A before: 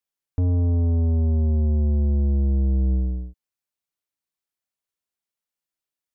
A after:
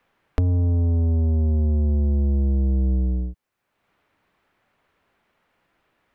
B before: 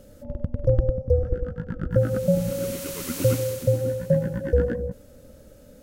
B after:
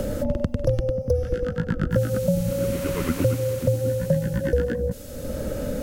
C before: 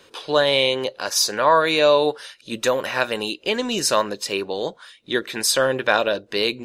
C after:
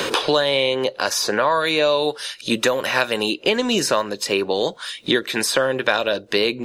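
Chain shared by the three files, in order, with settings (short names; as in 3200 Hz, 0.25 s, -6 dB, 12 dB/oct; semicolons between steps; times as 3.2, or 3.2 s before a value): three-band squash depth 100%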